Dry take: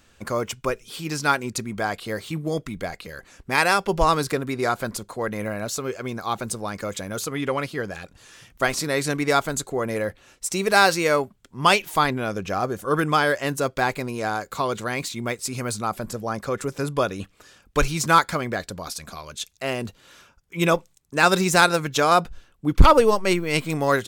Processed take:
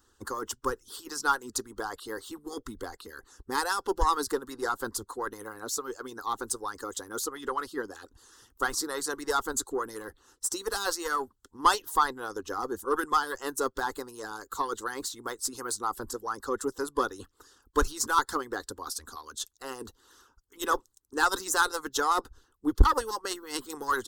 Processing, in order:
one-sided soft clipper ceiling −13 dBFS
harmonic and percussive parts rebalanced harmonic −18 dB
phaser with its sweep stopped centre 630 Hz, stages 6

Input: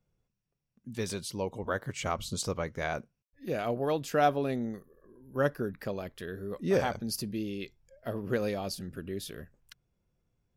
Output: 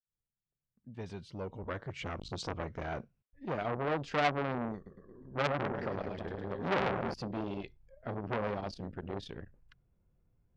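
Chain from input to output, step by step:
fade in at the beginning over 2.48 s
0:04.76–0:07.14: reverse bouncing-ball delay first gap 100 ms, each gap 1.1×, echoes 5
low-pass that shuts in the quiet parts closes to 1,900 Hz, open at −24 dBFS
low-shelf EQ 140 Hz +7 dB
treble cut that deepens with the level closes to 1,400 Hz, closed at −23 dBFS
saturating transformer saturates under 2,100 Hz

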